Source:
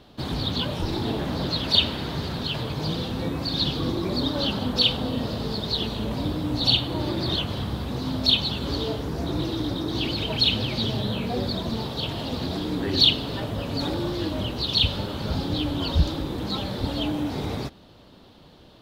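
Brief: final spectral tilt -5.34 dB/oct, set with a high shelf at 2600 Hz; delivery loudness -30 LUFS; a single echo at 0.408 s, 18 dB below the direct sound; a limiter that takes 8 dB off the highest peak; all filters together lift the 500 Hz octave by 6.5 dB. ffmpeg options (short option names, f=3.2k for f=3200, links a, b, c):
-af "equalizer=f=500:t=o:g=8.5,highshelf=f=2.6k:g=-7.5,alimiter=limit=-17dB:level=0:latency=1,aecho=1:1:408:0.126,volume=-3dB"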